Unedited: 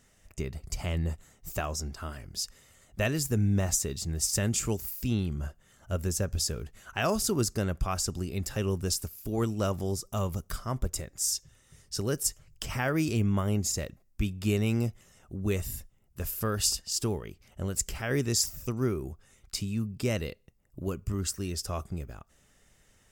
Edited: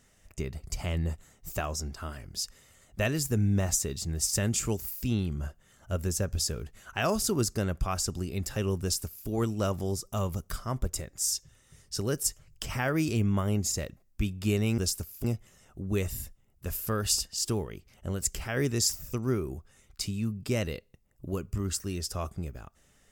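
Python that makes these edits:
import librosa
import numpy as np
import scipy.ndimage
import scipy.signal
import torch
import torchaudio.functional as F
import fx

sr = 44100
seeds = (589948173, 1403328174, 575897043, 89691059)

y = fx.edit(x, sr, fx.duplicate(start_s=8.82, length_s=0.46, to_s=14.78), tone=tone)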